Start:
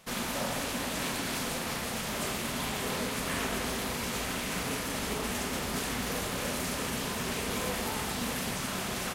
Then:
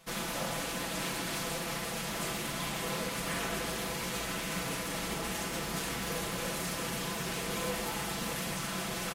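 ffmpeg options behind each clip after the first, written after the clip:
-af "aecho=1:1:6:0.65,volume=-3.5dB"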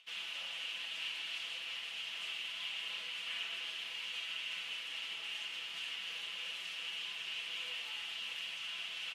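-af "acompressor=mode=upward:threshold=-56dB:ratio=2.5,flanger=delay=10:depth=3.7:regen=-55:speed=0.3:shape=triangular,bandpass=f=2.9k:t=q:w=6.6:csg=0,volume=10.5dB"

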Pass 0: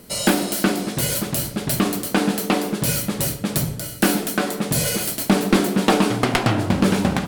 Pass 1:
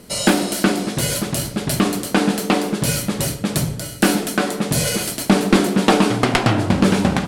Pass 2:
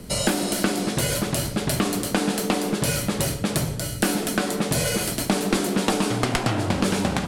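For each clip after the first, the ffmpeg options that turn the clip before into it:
-af "lowpass=11k,volume=2.5dB"
-filter_complex "[0:a]lowshelf=f=160:g=11.5,acrossover=split=330|2700|5500[a][b][c][d];[a]acompressor=threshold=-27dB:ratio=4[e];[b]acompressor=threshold=-24dB:ratio=4[f];[c]acompressor=threshold=-35dB:ratio=4[g];[d]acompressor=threshold=-28dB:ratio=4[h];[e][f][g][h]amix=inputs=4:normalize=0"

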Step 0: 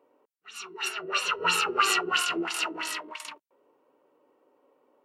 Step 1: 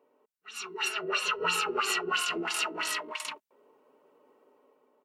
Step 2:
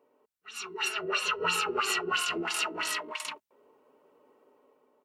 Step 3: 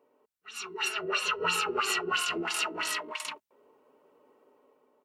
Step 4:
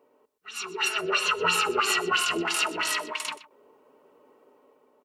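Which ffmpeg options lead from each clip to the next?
-af "acompressor=threshold=-32dB:ratio=2.5,aecho=1:1:4.7:0.41,dynaudnorm=f=160:g=7:m=5.5dB,volume=-3dB"
-af "equalizer=f=82:t=o:w=0.91:g=10"
-af anull
-af "aecho=1:1:124:0.141,volume=4.5dB"

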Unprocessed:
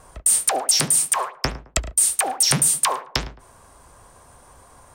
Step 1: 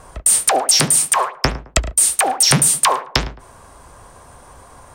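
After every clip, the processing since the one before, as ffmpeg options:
-af "highshelf=f=6.6k:g=-5,volume=7dB"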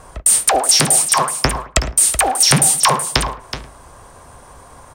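-af "aecho=1:1:375:0.299,volume=1dB"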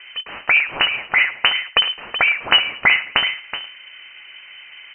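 -af "lowpass=f=2.6k:t=q:w=0.5098,lowpass=f=2.6k:t=q:w=0.6013,lowpass=f=2.6k:t=q:w=0.9,lowpass=f=2.6k:t=q:w=2.563,afreqshift=-3100,volume=1dB"

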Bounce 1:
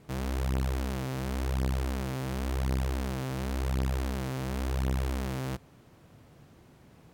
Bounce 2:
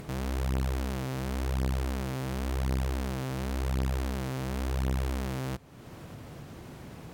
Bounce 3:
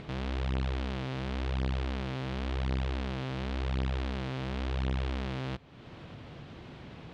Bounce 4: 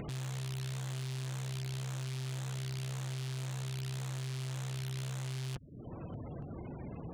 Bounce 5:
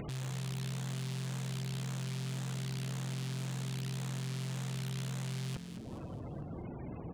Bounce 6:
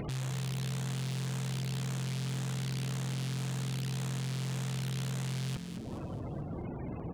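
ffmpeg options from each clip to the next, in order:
-af "acompressor=mode=upward:threshold=-33dB:ratio=2.5"
-af "lowpass=f=3.5k:t=q:w=1.7,volume=-2dB"
-af "afftfilt=real='re*gte(hypot(re,im),0.00562)':imag='im*gte(hypot(re,im),0.00562)':win_size=1024:overlap=0.75,aeval=exprs='0.0141*(abs(mod(val(0)/0.0141+3,4)-2)-1)':c=same,volume=3.5dB"
-filter_complex "[0:a]asplit=6[a][b][c][d][e][f];[b]adelay=214,afreqshift=44,volume=-9dB[g];[c]adelay=428,afreqshift=88,volume=-15.7dB[h];[d]adelay=642,afreqshift=132,volume=-22.5dB[i];[e]adelay=856,afreqshift=176,volume=-29.2dB[j];[f]adelay=1070,afreqshift=220,volume=-36dB[k];[a][g][h][i][j][k]amix=inputs=6:normalize=0"
-af "volume=35.5dB,asoftclip=hard,volume=-35.5dB,volume=4dB"

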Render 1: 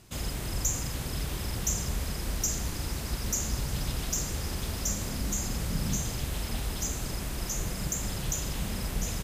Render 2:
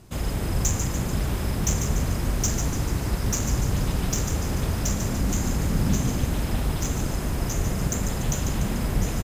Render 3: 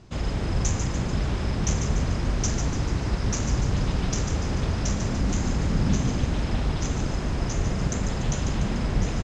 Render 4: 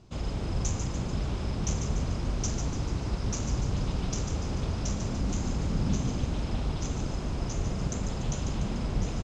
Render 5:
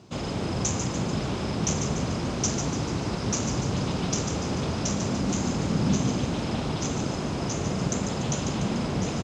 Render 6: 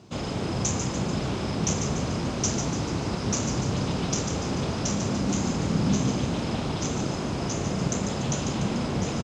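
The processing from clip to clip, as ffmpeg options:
-filter_complex "[0:a]asplit=2[a][b];[b]adynamicsmooth=sensitivity=6:basefreq=1.6k,volume=2dB[c];[a][c]amix=inputs=2:normalize=0,asplit=8[d][e][f][g][h][i][j][k];[e]adelay=146,afreqshift=48,volume=-7dB[l];[f]adelay=292,afreqshift=96,volume=-12.4dB[m];[g]adelay=438,afreqshift=144,volume=-17.7dB[n];[h]adelay=584,afreqshift=192,volume=-23.1dB[o];[i]adelay=730,afreqshift=240,volume=-28.4dB[p];[j]adelay=876,afreqshift=288,volume=-33.8dB[q];[k]adelay=1022,afreqshift=336,volume=-39.1dB[r];[d][l][m][n][o][p][q][r]amix=inputs=8:normalize=0"
-af "lowpass=f=6.2k:w=0.5412,lowpass=f=6.2k:w=1.3066"
-af "equalizer=f=1.8k:t=o:w=0.6:g=-6,volume=-5dB"
-af "highpass=140,volume=7.5dB"
-filter_complex "[0:a]asplit=2[a][b];[b]adelay=30,volume=-12dB[c];[a][c]amix=inputs=2:normalize=0"

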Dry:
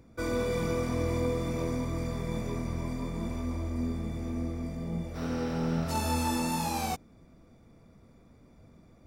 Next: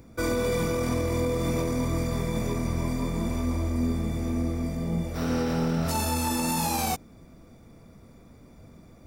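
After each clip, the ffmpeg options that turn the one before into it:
-af "highshelf=f=8.3k:g=8.5,alimiter=limit=-24dB:level=0:latency=1:release=22,volume=6dB"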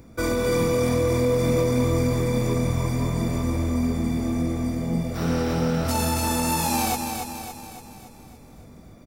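-af "aecho=1:1:282|564|846|1128|1410|1692|1974:0.501|0.266|0.141|0.0746|0.0395|0.021|0.0111,volume=2.5dB"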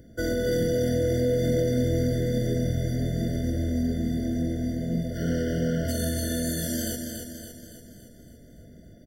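-af "afftfilt=real='re*eq(mod(floor(b*sr/1024/710),2),0)':imag='im*eq(mod(floor(b*sr/1024/710),2),0)':win_size=1024:overlap=0.75,volume=-2.5dB"

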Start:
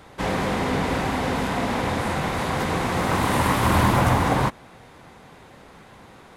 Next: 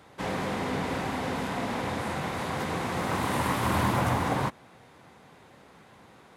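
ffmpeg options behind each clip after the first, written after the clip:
-af "highpass=81,volume=-6.5dB"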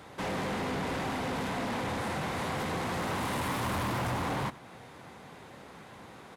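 -filter_complex "[0:a]asplit=2[a][b];[b]acompressor=threshold=-36dB:ratio=6,volume=-1dB[c];[a][c]amix=inputs=2:normalize=0,asoftclip=type=tanh:threshold=-28dB,aecho=1:1:91:0.119,volume=-1dB"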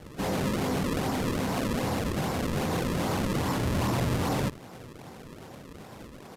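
-af "tiltshelf=f=1.2k:g=5,acrusher=samples=34:mix=1:aa=0.000001:lfo=1:lforange=54.4:lforate=2.5,volume=1.5dB" -ar 32000 -c:a sbc -b:a 192k

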